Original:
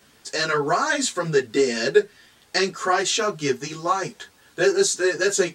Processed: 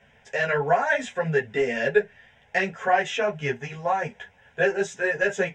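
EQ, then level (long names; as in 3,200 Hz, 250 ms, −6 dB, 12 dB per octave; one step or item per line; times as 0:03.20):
high-frequency loss of the air 200 metres
phaser with its sweep stopped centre 1,200 Hz, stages 6
+4.0 dB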